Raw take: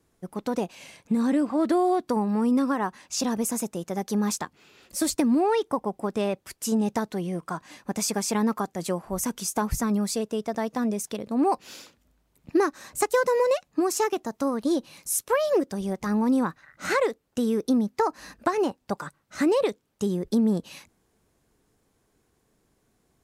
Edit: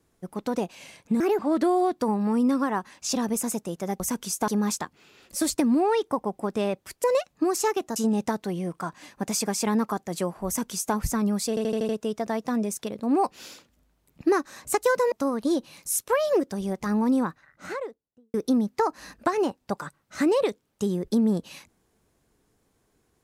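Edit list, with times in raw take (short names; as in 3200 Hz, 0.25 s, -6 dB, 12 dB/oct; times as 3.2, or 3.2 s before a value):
1.2–1.47 speed 143%
9.15–9.63 copy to 4.08
10.17 stutter 0.08 s, 6 plays
13.4–14.32 move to 6.64
16.22–17.54 studio fade out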